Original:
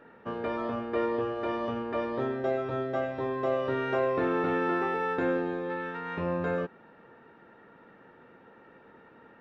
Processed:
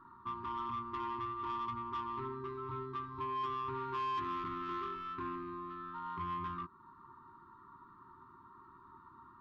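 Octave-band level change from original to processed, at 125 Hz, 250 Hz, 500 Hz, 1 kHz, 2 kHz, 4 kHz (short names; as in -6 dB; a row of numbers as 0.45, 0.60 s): -9.5, -14.0, -18.5, -3.0, -15.5, -5.0 dB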